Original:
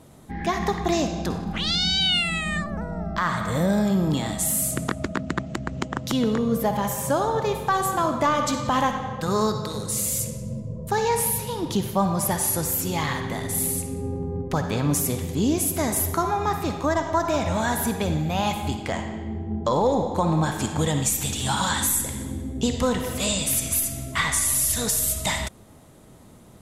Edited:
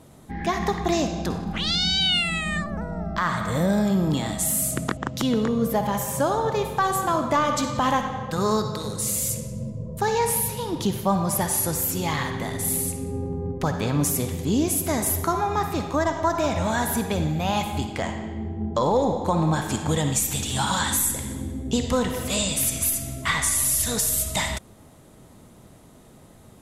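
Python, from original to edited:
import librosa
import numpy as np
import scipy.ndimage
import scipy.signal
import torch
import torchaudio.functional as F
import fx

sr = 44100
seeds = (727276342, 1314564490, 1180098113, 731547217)

y = fx.edit(x, sr, fx.cut(start_s=4.97, length_s=0.9), tone=tone)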